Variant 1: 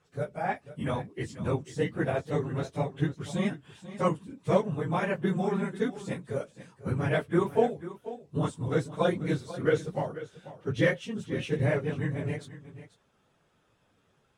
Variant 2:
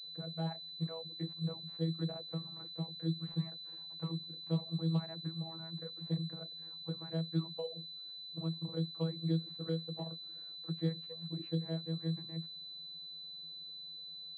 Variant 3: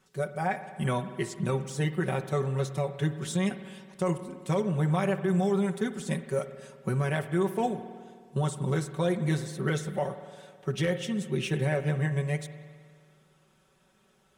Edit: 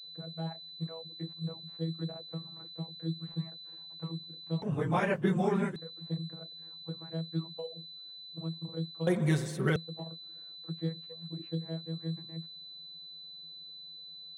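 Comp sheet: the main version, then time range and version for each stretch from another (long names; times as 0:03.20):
2
0:04.62–0:05.76: punch in from 1
0:09.07–0:09.76: punch in from 3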